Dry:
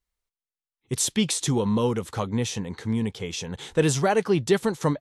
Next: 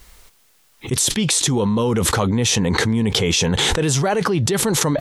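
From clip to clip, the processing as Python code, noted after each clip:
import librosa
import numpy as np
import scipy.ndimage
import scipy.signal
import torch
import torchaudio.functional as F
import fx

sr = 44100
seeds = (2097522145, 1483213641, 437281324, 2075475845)

y = fx.env_flatten(x, sr, amount_pct=100)
y = y * 10.0 ** (-2.5 / 20.0)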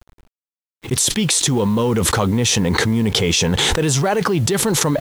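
y = fx.delta_hold(x, sr, step_db=-38.0)
y = np.sign(y) * np.maximum(np.abs(y) - 10.0 ** (-44.0 / 20.0), 0.0)
y = y * 10.0 ** (1.5 / 20.0)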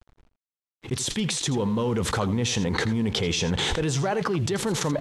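y = fx.air_absorb(x, sr, metres=55.0)
y = y + 10.0 ** (-14.0 / 20.0) * np.pad(y, (int(83 * sr / 1000.0), 0))[:len(y)]
y = y * 10.0 ** (-7.5 / 20.0)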